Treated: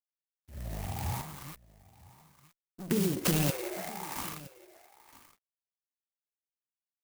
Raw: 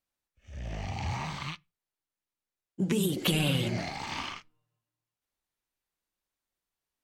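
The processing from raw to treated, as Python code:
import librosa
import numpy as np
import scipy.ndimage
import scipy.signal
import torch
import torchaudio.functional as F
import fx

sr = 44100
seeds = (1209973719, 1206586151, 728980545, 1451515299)

y = np.sign(x) * np.maximum(np.abs(x) - 10.0 ** (-51.0 / 20.0), 0.0)
y = fx.brickwall_bandpass(y, sr, low_hz=320.0, high_hz=2800.0, at=(3.5, 4.16))
y = y + 10.0 ** (-19.0 / 20.0) * np.pad(y, (int(968 * sr / 1000.0), 0))[:len(y)]
y = fx.tube_stage(y, sr, drive_db=40.0, bias=0.65, at=(1.21, 2.91))
y = fx.clock_jitter(y, sr, seeds[0], jitter_ms=0.088)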